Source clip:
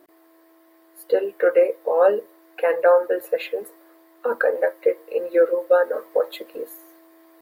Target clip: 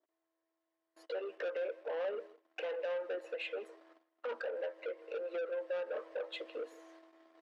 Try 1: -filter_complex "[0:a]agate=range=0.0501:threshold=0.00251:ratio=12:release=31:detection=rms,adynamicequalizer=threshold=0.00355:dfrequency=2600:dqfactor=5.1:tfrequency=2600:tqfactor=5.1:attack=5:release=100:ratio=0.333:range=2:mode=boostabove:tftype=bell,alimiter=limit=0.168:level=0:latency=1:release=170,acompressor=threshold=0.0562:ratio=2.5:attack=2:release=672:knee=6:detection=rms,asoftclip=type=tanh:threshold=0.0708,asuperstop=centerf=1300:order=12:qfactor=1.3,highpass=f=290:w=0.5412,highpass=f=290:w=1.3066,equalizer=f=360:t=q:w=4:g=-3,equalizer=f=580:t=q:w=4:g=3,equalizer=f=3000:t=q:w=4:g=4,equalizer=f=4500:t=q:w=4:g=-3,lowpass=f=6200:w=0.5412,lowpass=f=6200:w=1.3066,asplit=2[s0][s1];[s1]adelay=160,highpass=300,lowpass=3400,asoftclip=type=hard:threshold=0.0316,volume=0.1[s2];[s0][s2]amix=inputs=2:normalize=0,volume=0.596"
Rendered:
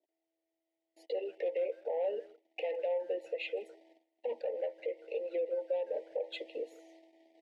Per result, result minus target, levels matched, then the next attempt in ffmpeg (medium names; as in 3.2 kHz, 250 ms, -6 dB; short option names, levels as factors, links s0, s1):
saturation: distortion -9 dB; 1 kHz band -2.5 dB
-filter_complex "[0:a]agate=range=0.0501:threshold=0.00251:ratio=12:release=31:detection=rms,adynamicequalizer=threshold=0.00355:dfrequency=2600:dqfactor=5.1:tfrequency=2600:tqfactor=5.1:attack=5:release=100:ratio=0.333:range=2:mode=boostabove:tftype=bell,alimiter=limit=0.168:level=0:latency=1:release=170,acompressor=threshold=0.0562:ratio=2.5:attack=2:release=672:knee=6:detection=rms,asoftclip=type=tanh:threshold=0.0299,asuperstop=centerf=1300:order=12:qfactor=1.3,highpass=f=290:w=0.5412,highpass=f=290:w=1.3066,equalizer=f=360:t=q:w=4:g=-3,equalizer=f=580:t=q:w=4:g=3,equalizer=f=3000:t=q:w=4:g=4,equalizer=f=4500:t=q:w=4:g=-3,lowpass=f=6200:w=0.5412,lowpass=f=6200:w=1.3066,asplit=2[s0][s1];[s1]adelay=160,highpass=300,lowpass=3400,asoftclip=type=hard:threshold=0.0316,volume=0.1[s2];[s0][s2]amix=inputs=2:normalize=0,volume=0.596"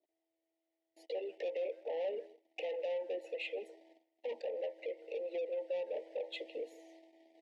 1 kHz band -3.0 dB
-filter_complex "[0:a]agate=range=0.0501:threshold=0.00251:ratio=12:release=31:detection=rms,adynamicequalizer=threshold=0.00355:dfrequency=2600:dqfactor=5.1:tfrequency=2600:tqfactor=5.1:attack=5:release=100:ratio=0.333:range=2:mode=boostabove:tftype=bell,alimiter=limit=0.168:level=0:latency=1:release=170,acompressor=threshold=0.0562:ratio=2.5:attack=2:release=672:knee=6:detection=rms,asoftclip=type=tanh:threshold=0.0299,highpass=f=290:w=0.5412,highpass=f=290:w=1.3066,equalizer=f=360:t=q:w=4:g=-3,equalizer=f=580:t=q:w=4:g=3,equalizer=f=3000:t=q:w=4:g=4,equalizer=f=4500:t=q:w=4:g=-3,lowpass=f=6200:w=0.5412,lowpass=f=6200:w=1.3066,asplit=2[s0][s1];[s1]adelay=160,highpass=300,lowpass=3400,asoftclip=type=hard:threshold=0.0316,volume=0.1[s2];[s0][s2]amix=inputs=2:normalize=0,volume=0.596"